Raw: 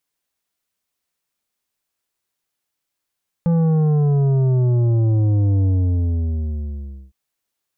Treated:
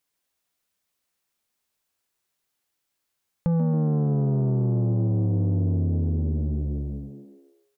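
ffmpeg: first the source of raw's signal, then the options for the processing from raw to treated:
-f lavfi -i "aevalsrc='0.188*clip((3.66-t)/1.48,0,1)*tanh(2.82*sin(2*PI*170*3.66/log(65/170)*(exp(log(65/170)*t/3.66)-1)))/tanh(2.82)':d=3.66:s=44100"
-filter_complex "[0:a]asplit=2[s0][s1];[s1]asplit=5[s2][s3][s4][s5][s6];[s2]adelay=136,afreqshift=69,volume=0.398[s7];[s3]adelay=272,afreqshift=138,volume=0.186[s8];[s4]adelay=408,afreqshift=207,volume=0.0881[s9];[s5]adelay=544,afreqshift=276,volume=0.0412[s10];[s6]adelay=680,afreqshift=345,volume=0.0195[s11];[s7][s8][s9][s10][s11]amix=inputs=5:normalize=0[s12];[s0][s12]amix=inputs=2:normalize=0,acompressor=threshold=0.0631:ratio=2.5"

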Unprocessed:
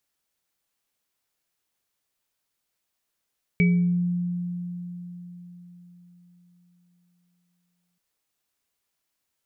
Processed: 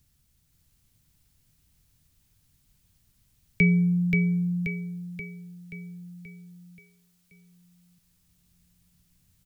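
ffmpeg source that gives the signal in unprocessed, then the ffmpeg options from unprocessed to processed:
-f lavfi -i "aevalsrc='0.168*pow(10,-3*t/4.4)*sin(2*PI*176*t)+0.0422*pow(10,-3*t/0.7)*sin(2*PI*413*t)+0.0891*pow(10,-3*t/0.38)*sin(2*PI*2280*t)':d=4.38:s=44100"
-filter_complex "[0:a]highshelf=f=2200:g=9,acrossover=split=150|500|590[s0][s1][s2][s3];[s0]acompressor=mode=upward:threshold=0.00708:ratio=2.5[s4];[s4][s1][s2][s3]amix=inputs=4:normalize=0,aecho=1:1:530|1060|1590|2120|2650|3180|3710:0.631|0.334|0.177|0.0939|0.0498|0.0264|0.014"

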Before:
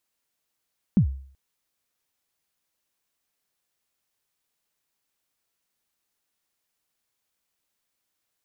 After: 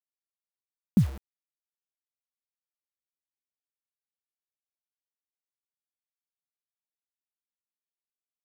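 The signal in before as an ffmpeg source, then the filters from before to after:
-f lavfi -i "aevalsrc='0.266*pow(10,-3*t/0.52)*sin(2*PI*(230*0.094/log(67/230)*(exp(log(67/230)*min(t,0.094)/0.094)-1)+67*max(t-0.094,0)))':d=0.38:s=44100"
-af "highpass=91,acrusher=bits=6:mix=0:aa=0.000001"

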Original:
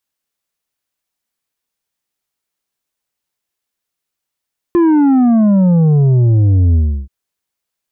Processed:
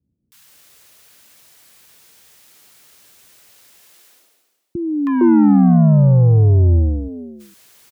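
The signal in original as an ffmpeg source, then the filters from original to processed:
-f lavfi -i "aevalsrc='0.398*clip((2.33-t)/0.33,0,1)*tanh(2.11*sin(2*PI*350*2.33/log(65/350)*(exp(log(65/350)*t/2.33)-1)))/tanh(2.11)':d=2.33:s=44100"
-filter_complex "[0:a]highpass=65,areverse,acompressor=mode=upward:threshold=0.0562:ratio=2.5,areverse,acrossover=split=250|910[s0][s1][s2];[s2]adelay=320[s3];[s1]adelay=460[s4];[s0][s4][s3]amix=inputs=3:normalize=0"

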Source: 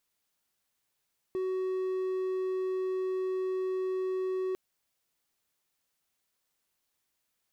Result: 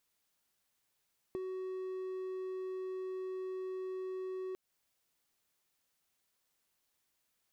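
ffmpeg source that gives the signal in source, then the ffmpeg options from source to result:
-f lavfi -i "aevalsrc='0.0447*(1-4*abs(mod(374*t+0.25,1)-0.5))':d=3.2:s=44100"
-af "acompressor=threshold=0.0112:ratio=6"

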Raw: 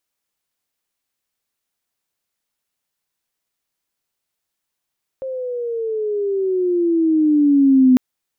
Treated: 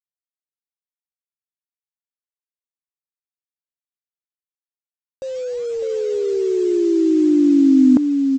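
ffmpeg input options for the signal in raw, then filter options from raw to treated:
-f lavfi -i "aevalsrc='pow(10,(-7.5+16*(t/2.75-1))/20)*sin(2*PI*533*2.75/(-13*log(2)/12)*(exp(-13*log(2)/12*t/2.75)-1))':d=2.75:s=44100"
-af "lowpass=1100,aresample=16000,acrusher=bits=6:mix=0:aa=0.000001,aresample=44100,aecho=1:1:603:0.596"

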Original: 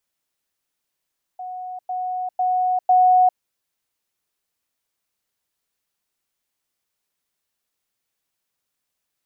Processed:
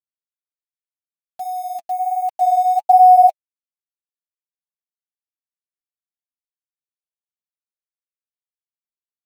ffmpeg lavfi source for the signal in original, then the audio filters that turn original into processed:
-f lavfi -i "aevalsrc='pow(10,(-29+6*floor(t/0.5))/20)*sin(2*PI*735*t)*clip(min(mod(t,0.5),0.4-mod(t,0.5))/0.005,0,1)':d=2:s=44100"
-af "firequalizer=gain_entry='entry(460,0);entry(810,11);entry(1200,-26)':delay=0.05:min_phase=1,acrusher=bits=5:mix=0:aa=0.000001,flanger=delay=2.5:depth=6.7:regen=-19:speed=1.3:shape=sinusoidal"

